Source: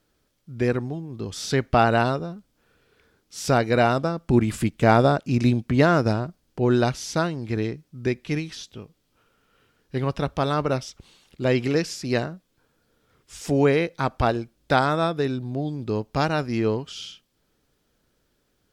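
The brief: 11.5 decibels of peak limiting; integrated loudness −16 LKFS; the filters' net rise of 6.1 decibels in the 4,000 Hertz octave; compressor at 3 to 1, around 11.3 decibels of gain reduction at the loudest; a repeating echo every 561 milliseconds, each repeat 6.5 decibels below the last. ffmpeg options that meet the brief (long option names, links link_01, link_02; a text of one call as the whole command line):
ffmpeg -i in.wav -af "equalizer=frequency=4000:width_type=o:gain=7.5,acompressor=threshold=-28dB:ratio=3,alimiter=level_in=1dB:limit=-24dB:level=0:latency=1,volume=-1dB,aecho=1:1:561|1122|1683|2244|2805|3366:0.473|0.222|0.105|0.0491|0.0231|0.0109,volume=19dB" out.wav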